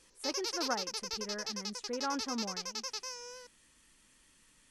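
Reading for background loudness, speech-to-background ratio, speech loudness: −38.0 LKFS, −2.5 dB, −40.5 LKFS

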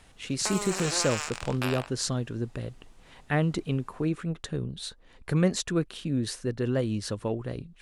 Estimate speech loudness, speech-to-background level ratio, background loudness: −30.0 LKFS, 4.0 dB, −34.0 LKFS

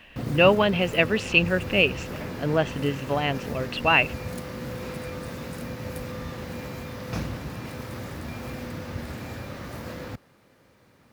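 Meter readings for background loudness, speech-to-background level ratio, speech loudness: −35.0 LKFS, 12.5 dB, −22.5 LKFS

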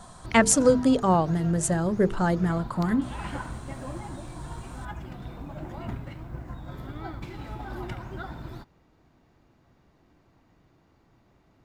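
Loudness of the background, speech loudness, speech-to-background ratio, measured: −39.0 LKFS, −23.5 LKFS, 15.5 dB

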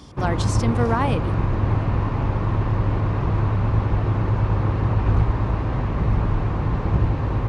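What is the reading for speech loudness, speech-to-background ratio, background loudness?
−25.5 LKFS, −3.0 dB, −22.5 LKFS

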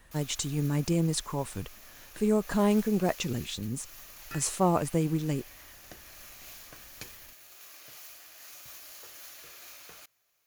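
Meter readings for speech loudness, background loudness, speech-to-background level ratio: −29.5 LKFS, −46.5 LKFS, 17.0 dB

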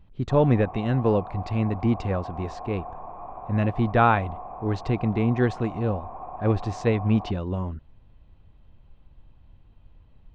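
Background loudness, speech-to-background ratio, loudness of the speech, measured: −39.0 LKFS, 13.5 dB, −25.5 LKFS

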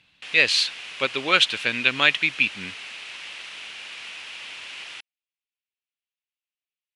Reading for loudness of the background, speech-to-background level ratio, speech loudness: −35.5 LKFS, 15.0 dB, −20.5 LKFS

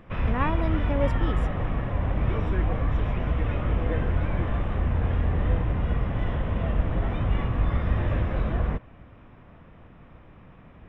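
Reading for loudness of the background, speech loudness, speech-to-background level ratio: −27.5 LKFS, −31.0 LKFS, −3.5 dB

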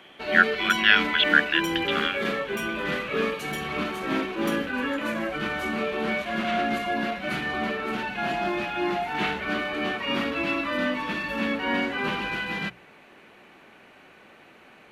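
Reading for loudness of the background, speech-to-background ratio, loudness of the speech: −27.5 LKFS, 5.5 dB, −22.0 LKFS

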